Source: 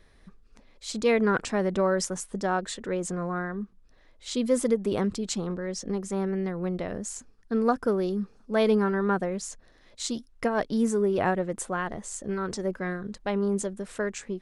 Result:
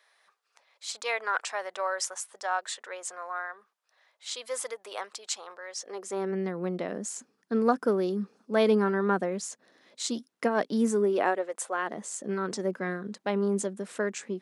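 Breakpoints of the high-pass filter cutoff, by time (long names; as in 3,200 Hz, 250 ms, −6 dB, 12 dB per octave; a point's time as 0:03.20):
high-pass filter 24 dB per octave
0:05.76 680 Hz
0:06.37 190 Hz
0:10.99 190 Hz
0:11.61 560 Hz
0:11.99 180 Hz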